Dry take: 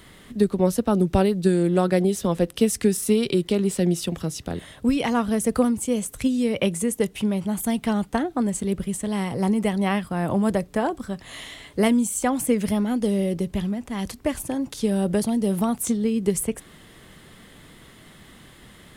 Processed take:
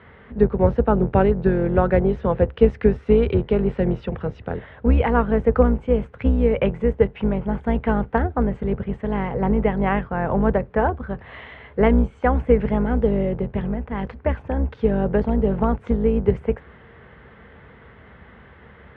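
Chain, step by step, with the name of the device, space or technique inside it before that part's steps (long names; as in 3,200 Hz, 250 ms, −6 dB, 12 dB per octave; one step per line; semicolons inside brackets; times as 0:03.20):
sub-octave bass pedal (sub-octave generator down 2 octaves, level +2 dB; loudspeaker in its box 63–2,300 Hz, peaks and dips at 69 Hz +6 dB, 170 Hz −4 dB, 310 Hz −9 dB, 460 Hz +7 dB, 870 Hz +4 dB, 1,500 Hz +5 dB)
level +1.5 dB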